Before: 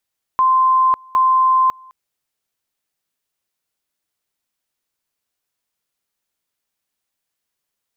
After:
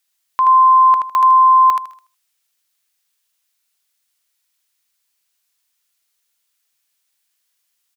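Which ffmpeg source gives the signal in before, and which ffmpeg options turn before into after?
-f lavfi -i "aevalsrc='pow(10,(-10.5-28.5*gte(mod(t,0.76),0.55))/20)*sin(2*PI*1040*t)':d=1.52:s=44100"
-filter_complex "[0:a]tiltshelf=f=970:g=-9,asplit=2[s0][s1];[s1]aecho=0:1:78|156|234:0.562|0.129|0.0297[s2];[s0][s2]amix=inputs=2:normalize=0"

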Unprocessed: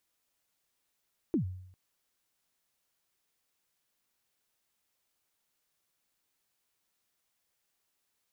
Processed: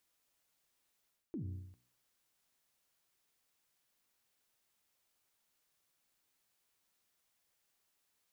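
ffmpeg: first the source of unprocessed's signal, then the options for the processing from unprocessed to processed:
-f lavfi -i "aevalsrc='0.0708*pow(10,-3*t/0.73)*sin(2*PI*(370*0.106/log(92/370)*(exp(log(92/370)*min(t,0.106)/0.106)-1)+92*max(t-0.106,0)))':d=0.4:s=44100"
-af "bandreject=f=61.3:t=h:w=4,bandreject=f=122.6:t=h:w=4,bandreject=f=183.9:t=h:w=4,bandreject=f=245.2:t=h:w=4,bandreject=f=306.5:t=h:w=4,bandreject=f=367.8:t=h:w=4,bandreject=f=429.1:t=h:w=4,bandreject=f=490.4:t=h:w=4,areverse,acompressor=threshold=0.00891:ratio=6,areverse"

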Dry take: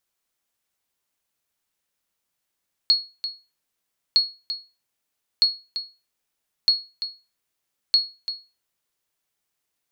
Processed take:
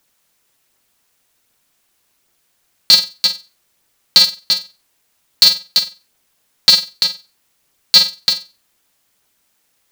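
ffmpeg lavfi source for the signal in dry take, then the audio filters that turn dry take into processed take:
-f lavfi -i "aevalsrc='0.335*(sin(2*PI*4330*mod(t,1.26))*exp(-6.91*mod(t,1.26)/0.29)+0.266*sin(2*PI*4330*max(mod(t,1.26)-0.34,0))*exp(-6.91*max(mod(t,1.26)-0.34,0)/0.29))':d=6.3:s=44100"
-af "aphaser=in_gain=1:out_gain=1:delay=1.9:decay=0.28:speed=1.3:type=triangular,alimiter=level_in=5.96:limit=0.891:release=50:level=0:latency=1,aeval=exprs='val(0)*sgn(sin(2*PI*180*n/s))':c=same"

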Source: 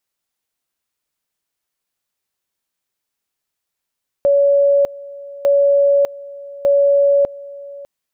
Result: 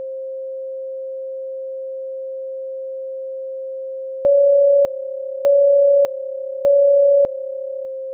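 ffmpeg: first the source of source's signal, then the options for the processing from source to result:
-f lavfi -i "aevalsrc='pow(10,(-9.5-20.5*gte(mod(t,1.2),0.6))/20)*sin(2*PI*564*t)':d=3.6:s=44100"
-af "aeval=exprs='val(0)+0.0562*sin(2*PI*530*n/s)':c=same"

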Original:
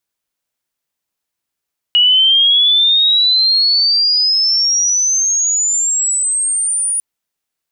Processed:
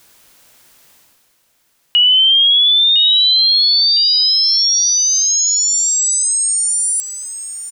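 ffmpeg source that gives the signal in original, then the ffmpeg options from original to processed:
-f lavfi -i "aevalsrc='pow(10,(-7-7*t/5.05)/20)*sin(2*PI*2900*5.05/log(9700/2900)*(exp(log(9700/2900)*t/5.05)-1))':d=5.05:s=44100"
-af "areverse,acompressor=mode=upward:threshold=0.0631:ratio=2.5,areverse,aecho=1:1:1008|2016|3024:0.266|0.0718|0.0194"

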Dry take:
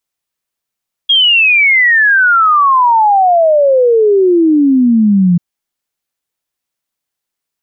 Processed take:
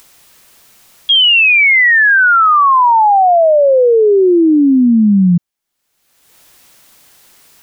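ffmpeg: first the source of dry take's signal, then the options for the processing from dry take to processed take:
-f lavfi -i "aevalsrc='0.531*clip(min(t,4.29-t)/0.01,0,1)*sin(2*PI*3300*4.29/log(170/3300)*(exp(log(170/3300)*t/4.29)-1))':d=4.29:s=44100"
-af "acompressor=mode=upward:threshold=0.1:ratio=2.5"

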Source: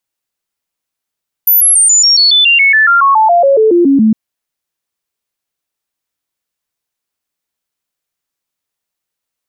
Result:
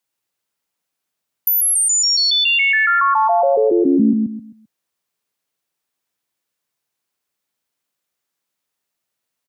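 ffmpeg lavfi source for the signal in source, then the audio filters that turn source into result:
-f lavfi -i "aevalsrc='0.596*clip(min(mod(t,0.14),0.14-mod(t,0.14))/0.005,0,1)*sin(2*PI*14000*pow(2,-floor(t/0.14)/3)*mod(t,0.14))':d=2.66:s=44100"
-filter_complex "[0:a]highpass=100,acrossover=split=130[s0][s1];[s1]acompressor=threshold=0.0794:ratio=2[s2];[s0][s2]amix=inputs=2:normalize=0,asplit=2[s3][s4];[s4]adelay=131,lowpass=f=2200:p=1,volume=0.708,asplit=2[s5][s6];[s6]adelay=131,lowpass=f=2200:p=1,volume=0.3,asplit=2[s7][s8];[s8]adelay=131,lowpass=f=2200:p=1,volume=0.3,asplit=2[s9][s10];[s10]adelay=131,lowpass=f=2200:p=1,volume=0.3[s11];[s5][s7][s9][s11]amix=inputs=4:normalize=0[s12];[s3][s12]amix=inputs=2:normalize=0"

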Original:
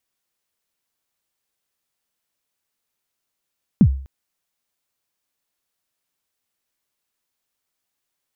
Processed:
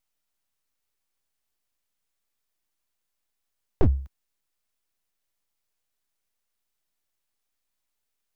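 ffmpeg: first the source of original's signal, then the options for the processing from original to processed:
-f lavfi -i "aevalsrc='0.562*pow(10,-3*t/0.47)*sin(2*PI*(250*0.071/log(67/250)*(exp(log(67/250)*min(t,0.071)/0.071)-1)+67*max(t-0.071,0)))':d=0.25:s=44100"
-filter_complex "[0:a]equalizer=f=230:t=o:w=0.27:g=-12.5,acrossover=split=110[s0][s1];[s1]aeval=exprs='abs(val(0))':c=same[s2];[s0][s2]amix=inputs=2:normalize=0"

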